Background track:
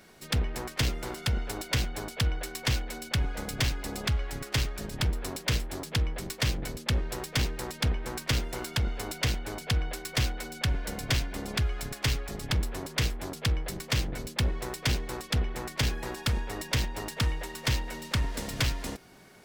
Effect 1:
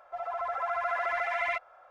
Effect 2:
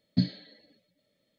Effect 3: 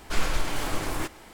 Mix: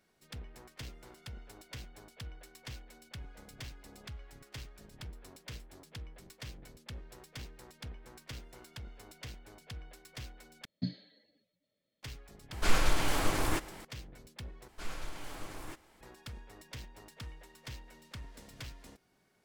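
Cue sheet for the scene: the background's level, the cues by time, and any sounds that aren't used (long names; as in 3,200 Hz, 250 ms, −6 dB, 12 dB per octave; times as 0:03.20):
background track −18 dB
0:10.65: overwrite with 2 −10.5 dB
0:12.52: mix in 3 −1 dB
0:14.68: overwrite with 3 −15 dB
not used: 1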